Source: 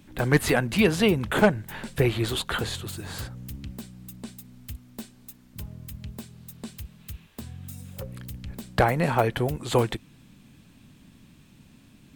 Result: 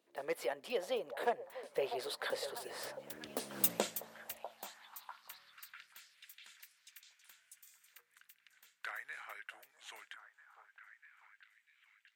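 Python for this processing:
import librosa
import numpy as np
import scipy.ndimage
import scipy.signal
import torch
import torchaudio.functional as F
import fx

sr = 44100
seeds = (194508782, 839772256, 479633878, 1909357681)

y = fx.doppler_pass(x, sr, speed_mps=38, closest_m=2.8, pass_at_s=3.66)
y = fx.echo_stepped(y, sr, ms=646, hz=700.0, octaves=0.7, feedback_pct=70, wet_db=-8)
y = fx.filter_sweep_highpass(y, sr, from_hz=530.0, to_hz=1700.0, start_s=4.06, end_s=6.01, q=2.7)
y = fx.rider(y, sr, range_db=3, speed_s=2.0)
y = y * librosa.db_to_amplitude(13.5)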